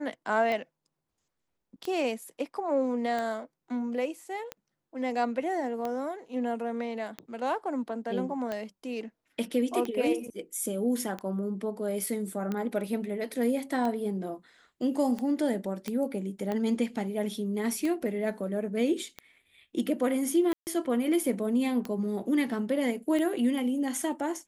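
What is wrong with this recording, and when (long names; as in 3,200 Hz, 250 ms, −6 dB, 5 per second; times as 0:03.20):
scratch tick 45 rpm −20 dBFS
0:15.88: click −18 dBFS
0:20.53–0:20.67: drop-out 139 ms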